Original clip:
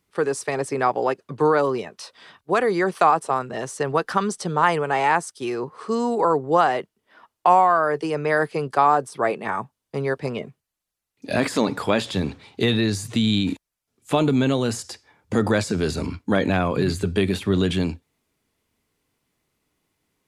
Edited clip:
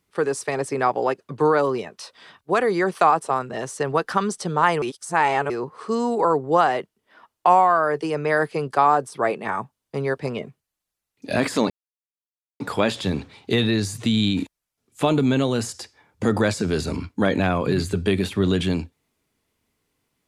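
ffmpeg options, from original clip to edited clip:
ffmpeg -i in.wav -filter_complex "[0:a]asplit=4[link_01][link_02][link_03][link_04];[link_01]atrim=end=4.822[link_05];[link_02]atrim=start=4.818:end=5.502,asetpts=PTS-STARTPTS,areverse[link_06];[link_03]atrim=start=5.498:end=11.7,asetpts=PTS-STARTPTS,afade=type=out:start_time=6.198:duration=0.004:curve=hsin,apad=pad_dur=0.9[link_07];[link_04]atrim=start=11.7,asetpts=PTS-STARTPTS,afade=type=in:duration=0.004:curve=hsin[link_08];[link_05][link_06]acrossfade=duration=0.004:curve1=hsin:curve2=hsin[link_09];[link_07][link_08]concat=n=2:v=0:a=1[link_10];[link_09][link_10]acrossfade=duration=0.004:curve1=hsin:curve2=hsin" out.wav

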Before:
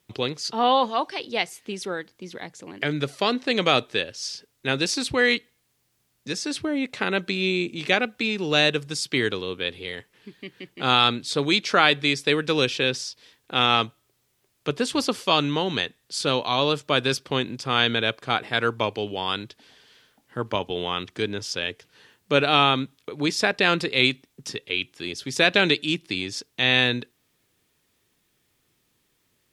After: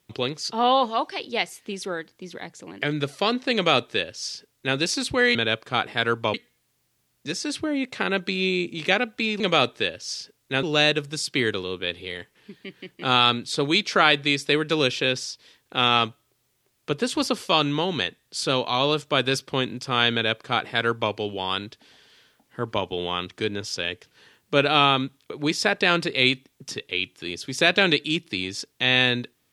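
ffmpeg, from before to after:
ffmpeg -i in.wav -filter_complex "[0:a]asplit=5[link_01][link_02][link_03][link_04][link_05];[link_01]atrim=end=5.352[link_06];[link_02]atrim=start=17.908:end=18.902[link_07];[link_03]atrim=start=5.348:end=8.412[link_08];[link_04]atrim=start=3.538:end=4.772[link_09];[link_05]atrim=start=8.408[link_10];[link_06][link_07]acrossfade=duration=0.004:curve1=hsin:curve2=hsin[link_11];[link_11][link_08]acrossfade=duration=0.004:curve1=hsin:curve2=hsin[link_12];[link_12][link_09]acrossfade=duration=0.004:curve1=hsin:curve2=hsin[link_13];[link_13][link_10]acrossfade=duration=0.004:curve1=hsin:curve2=hsin" out.wav

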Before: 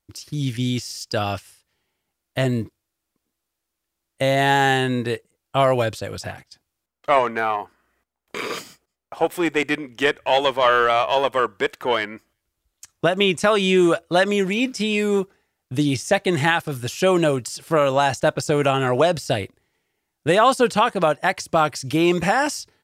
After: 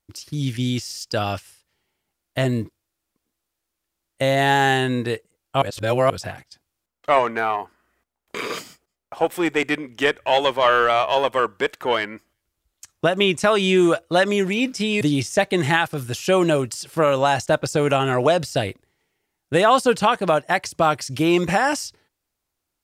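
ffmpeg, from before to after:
ffmpeg -i in.wav -filter_complex "[0:a]asplit=4[link_01][link_02][link_03][link_04];[link_01]atrim=end=5.622[link_05];[link_02]atrim=start=5.618:end=6.102,asetpts=PTS-STARTPTS,areverse[link_06];[link_03]atrim=start=6.098:end=15.012[link_07];[link_04]atrim=start=15.748[link_08];[link_05][link_06]acrossfade=duration=0.004:curve1=hsin:curve2=hsin[link_09];[link_09][link_07]acrossfade=duration=0.004:curve1=hsin:curve2=hsin[link_10];[link_10][link_08]acrossfade=duration=0.004:curve1=hsin:curve2=hsin" out.wav

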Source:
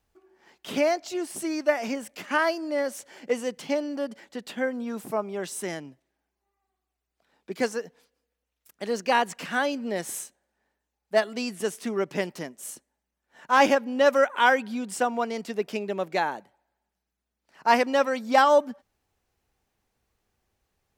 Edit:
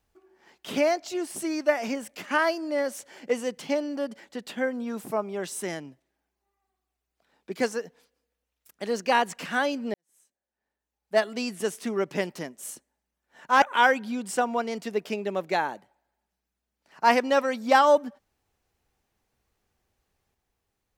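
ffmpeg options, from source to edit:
ffmpeg -i in.wav -filter_complex "[0:a]asplit=3[link_01][link_02][link_03];[link_01]atrim=end=9.94,asetpts=PTS-STARTPTS,afade=type=out:start_time=9.936:duration=0.004:curve=hsin[link_04];[link_02]atrim=start=9.94:end=13.622,asetpts=PTS-STARTPTS,afade=type=in:duration=1.27:curve=qua[link_05];[link_03]atrim=start=14.248[link_06];[link_04][link_05]concat=n=2:v=0:a=1[link_07];[link_07][link_06]acrossfade=duration=0.004:curve1=hsin:curve2=hsin" out.wav

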